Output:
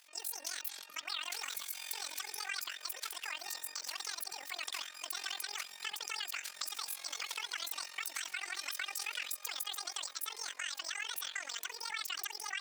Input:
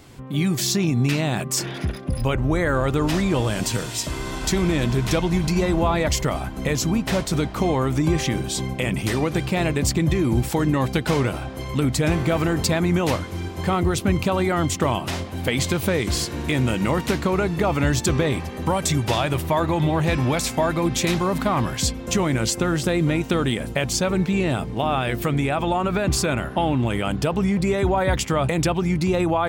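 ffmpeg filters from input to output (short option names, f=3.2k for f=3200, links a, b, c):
-af "highpass=1.1k,highshelf=f=4.7k:g=-6,acompressor=threshold=-27dB:ratio=6,tremolo=f=19:d=0.84,asetrate=103194,aresample=44100,volume=-4dB"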